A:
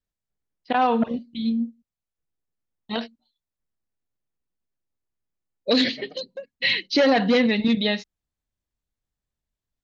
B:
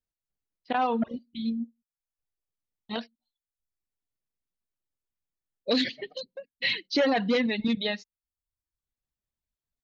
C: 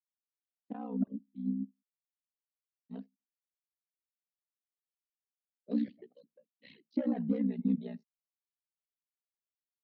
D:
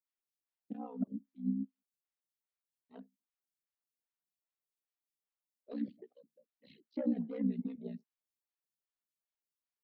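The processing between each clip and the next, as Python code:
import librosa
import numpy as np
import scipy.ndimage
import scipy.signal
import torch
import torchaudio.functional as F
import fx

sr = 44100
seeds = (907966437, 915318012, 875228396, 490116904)

y1 = fx.dereverb_blind(x, sr, rt60_s=0.67)
y1 = y1 * 10.0 ** (-5.0 / 20.0)
y2 = y1 * np.sin(2.0 * np.pi * 31.0 * np.arange(len(y1)) / sr)
y2 = fx.bandpass_q(y2, sr, hz=230.0, q=2.3)
y2 = fx.band_widen(y2, sr, depth_pct=40)
y3 = fx.stagger_phaser(y2, sr, hz=2.5)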